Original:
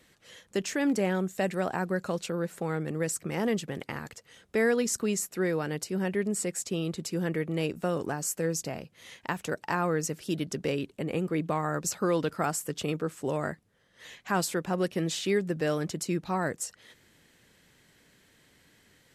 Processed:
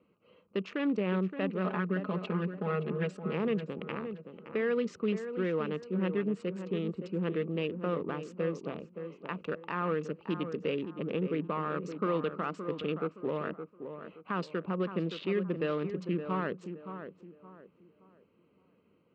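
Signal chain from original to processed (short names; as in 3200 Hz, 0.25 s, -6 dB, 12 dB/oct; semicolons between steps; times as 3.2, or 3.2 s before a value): Wiener smoothing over 25 samples; 1.64–3.33 comb 4.8 ms, depth 98%; limiter -21 dBFS, peak gain reduction 6.5 dB; speaker cabinet 120–3700 Hz, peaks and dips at 130 Hz -6 dB, 190 Hz +4 dB, 460 Hz +4 dB, 750 Hz -7 dB, 1200 Hz +9 dB, 2700 Hz +7 dB; on a send: tape echo 0.569 s, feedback 36%, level -7.5 dB, low-pass 1500 Hz; on the sum: gain -3 dB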